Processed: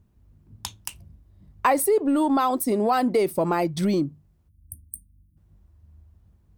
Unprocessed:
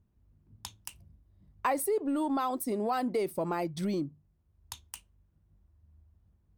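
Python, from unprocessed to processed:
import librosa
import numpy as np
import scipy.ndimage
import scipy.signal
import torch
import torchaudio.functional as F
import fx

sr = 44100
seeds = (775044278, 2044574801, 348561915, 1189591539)

y = fx.spec_erase(x, sr, start_s=4.49, length_s=0.88, low_hz=330.0, high_hz=8500.0)
y = y * librosa.db_to_amplitude(9.0)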